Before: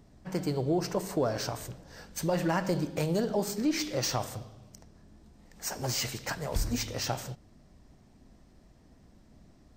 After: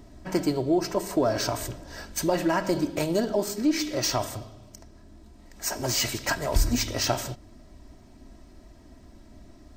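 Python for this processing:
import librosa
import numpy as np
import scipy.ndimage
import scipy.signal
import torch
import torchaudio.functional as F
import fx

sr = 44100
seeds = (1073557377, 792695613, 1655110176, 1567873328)

y = x + 0.54 * np.pad(x, (int(3.1 * sr / 1000.0), 0))[:len(x)]
y = fx.rider(y, sr, range_db=4, speed_s=0.5)
y = y * librosa.db_to_amplitude(4.5)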